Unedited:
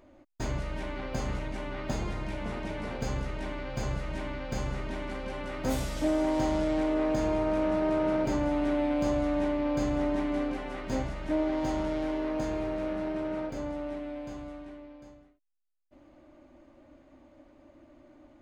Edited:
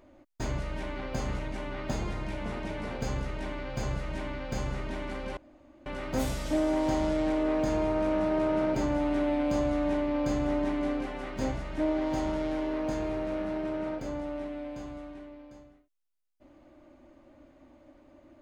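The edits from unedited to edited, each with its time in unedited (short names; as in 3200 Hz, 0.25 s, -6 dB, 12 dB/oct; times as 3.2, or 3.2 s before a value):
5.37 insert room tone 0.49 s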